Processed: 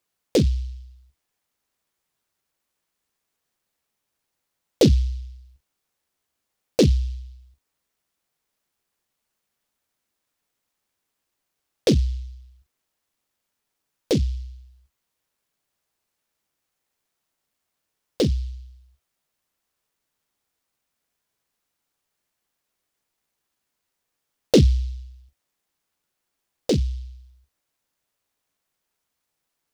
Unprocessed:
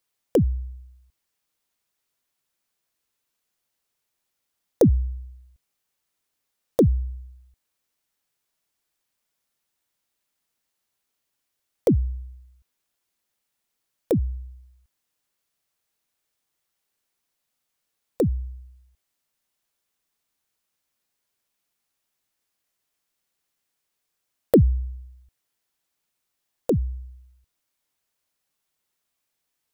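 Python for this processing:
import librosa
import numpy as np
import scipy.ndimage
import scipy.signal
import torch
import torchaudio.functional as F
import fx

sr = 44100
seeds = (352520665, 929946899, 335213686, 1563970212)

y = fx.room_early_taps(x, sr, ms=(14, 43), db=(-6.5, -14.0))
y = fx.noise_mod_delay(y, sr, seeds[0], noise_hz=3900.0, depth_ms=0.092)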